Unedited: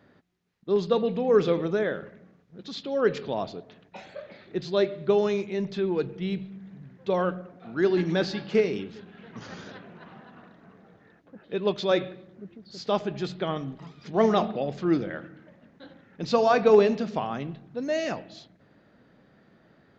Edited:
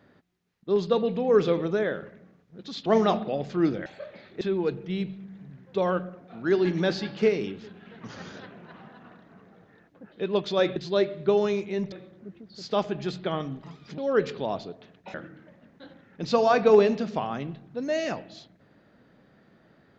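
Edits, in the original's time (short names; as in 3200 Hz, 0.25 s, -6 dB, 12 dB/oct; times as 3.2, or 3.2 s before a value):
2.86–4.02 swap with 14.14–15.14
4.57–5.73 move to 12.08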